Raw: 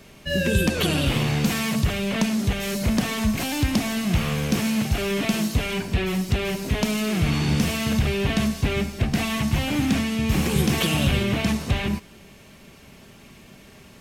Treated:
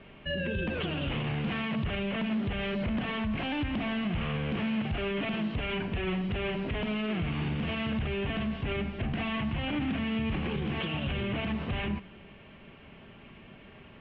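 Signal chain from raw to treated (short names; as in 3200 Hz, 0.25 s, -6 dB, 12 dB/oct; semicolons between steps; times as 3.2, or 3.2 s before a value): elliptic low-pass 3100 Hz, stop band 70 dB; de-hum 63.63 Hz, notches 4; limiter -22 dBFS, peak gain reduction 11.5 dB; gain -2 dB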